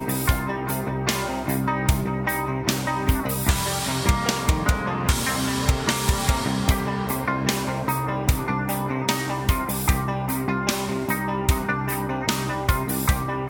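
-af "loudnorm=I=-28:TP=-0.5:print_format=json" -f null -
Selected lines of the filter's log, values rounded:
"input_i" : "-23.9",
"input_tp" : "-6.0",
"input_lra" : "1.7",
"input_thresh" : "-33.9",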